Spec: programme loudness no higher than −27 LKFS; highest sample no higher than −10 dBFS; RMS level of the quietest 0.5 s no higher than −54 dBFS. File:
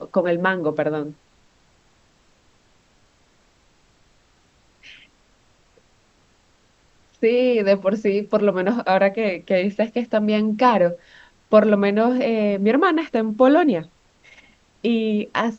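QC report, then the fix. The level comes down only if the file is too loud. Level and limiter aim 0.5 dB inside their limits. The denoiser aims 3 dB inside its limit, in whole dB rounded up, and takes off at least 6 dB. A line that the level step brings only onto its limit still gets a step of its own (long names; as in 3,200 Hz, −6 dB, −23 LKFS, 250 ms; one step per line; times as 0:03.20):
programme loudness −19.5 LKFS: out of spec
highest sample −2.5 dBFS: out of spec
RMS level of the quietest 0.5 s −59 dBFS: in spec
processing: level −8 dB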